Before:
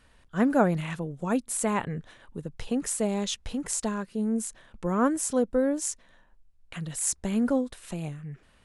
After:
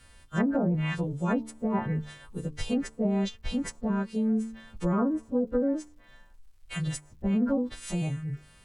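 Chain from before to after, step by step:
every partial snapped to a pitch grid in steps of 2 semitones
treble cut that deepens with the level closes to 480 Hz, closed at −18.5 dBFS
low-shelf EQ 220 Hz +9.5 dB
hum removal 74.57 Hz, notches 17
downward compressor, threshold −22 dBFS, peak gain reduction 6 dB
surface crackle 410 per second −62 dBFS

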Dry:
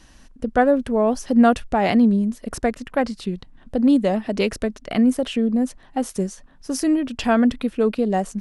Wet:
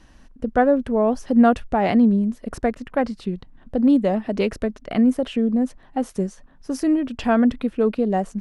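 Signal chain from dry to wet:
high-shelf EQ 3,200 Hz −10 dB

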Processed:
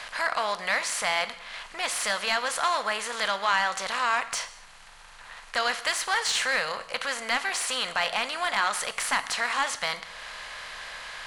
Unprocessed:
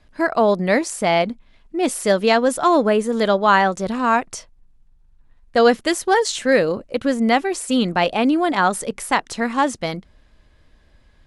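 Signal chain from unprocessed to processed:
compressor on every frequency bin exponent 0.6
downward compressor 1.5 to 1, threshold −35 dBFS, peak gain reduction 10 dB
guitar amp tone stack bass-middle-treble 10-0-10
mid-hump overdrive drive 14 dB, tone 3,600 Hz, clips at −12.5 dBFS
reverb whose tail is shaped and stops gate 280 ms falling, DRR 11 dB
level +1 dB

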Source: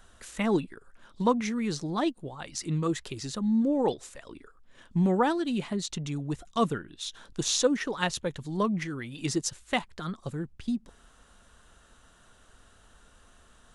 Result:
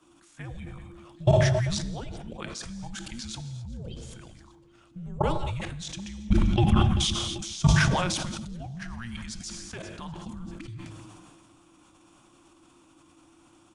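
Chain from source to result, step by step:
0:06.29–0:06.80: octave-band graphic EQ 125/250/500/1,000/2,000/4,000/8,000 Hz +9/+3/+11/−5/+7/+5/−11 dB
output level in coarse steps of 21 dB
frequency shifter −350 Hz
repeating echo 390 ms, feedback 59%, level −23 dB
reverb whose tail is shaped and stops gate 300 ms flat, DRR 10.5 dB
level that may fall only so fast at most 27 dB per second
level +4 dB

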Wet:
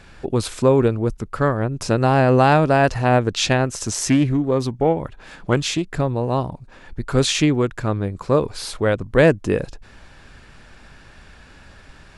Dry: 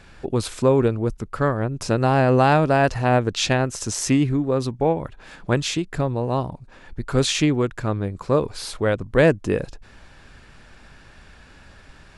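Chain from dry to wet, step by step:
0:03.66–0:05.98: highs frequency-modulated by the lows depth 0.22 ms
level +2 dB

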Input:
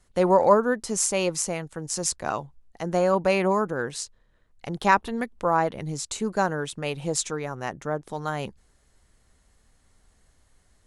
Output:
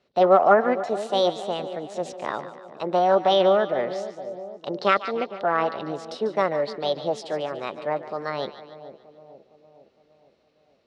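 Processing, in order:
formants moved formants +5 semitones
loudspeaker in its box 210–4,600 Hz, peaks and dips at 390 Hz +4 dB, 580 Hz +8 dB, 1,000 Hz −4 dB, 1,600 Hz −4 dB, 2,300 Hz −4 dB, 4,000 Hz +5 dB
echo with a time of its own for lows and highs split 740 Hz, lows 462 ms, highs 145 ms, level −12.5 dB

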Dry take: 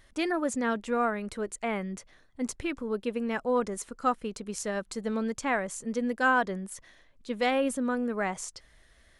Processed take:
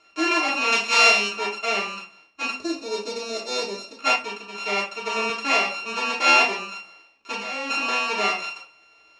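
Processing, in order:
samples sorted by size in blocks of 32 samples
0:00.72–0:01.30: high-shelf EQ 2,300 Hz +11 dB
0:02.55–0:03.95: gain on a spectral selection 710–3,500 Hz −12 dB
0:07.39–0:07.82: compressor whose output falls as the input rises −35 dBFS, ratio −1
loudspeaker in its box 470–6,500 Hz, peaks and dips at 1,500 Hz −7 dB, 2,500 Hz +10 dB, 5,500 Hz +4 dB
convolution reverb RT60 0.35 s, pre-delay 3 ms, DRR −7.5 dB
0:04.16–0:05.30: multiband upward and downward expander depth 70%

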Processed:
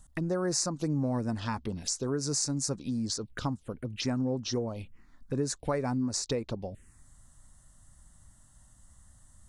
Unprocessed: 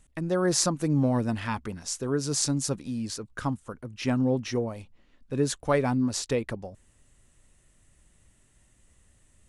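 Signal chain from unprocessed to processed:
dynamic equaliser 4,100 Hz, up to +6 dB, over −45 dBFS, Q 0.72
downward compressor 3 to 1, threshold −35 dBFS, peak gain reduction 13.5 dB
phaser swept by the level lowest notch 370 Hz, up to 3,200 Hz, full sweep at −32.5 dBFS
level +5 dB

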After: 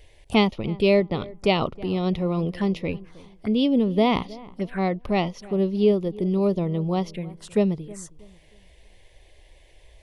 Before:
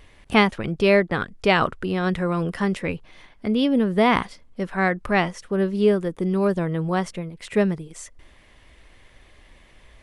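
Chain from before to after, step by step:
phaser swept by the level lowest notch 190 Hz, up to 1,600 Hz, full sweep at −23 dBFS
on a send: feedback echo with a low-pass in the loop 317 ms, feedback 32%, low-pass 1,500 Hz, level −20 dB

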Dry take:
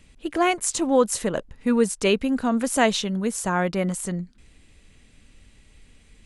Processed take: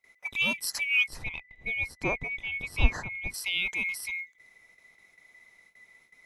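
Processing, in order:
neighbouring bands swapped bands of 2,000 Hz
noise gate with hold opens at −42 dBFS
log-companded quantiser 8 bits
0:01.08–0:03.34: spectral tilt −4.5 dB per octave
level −7 dB

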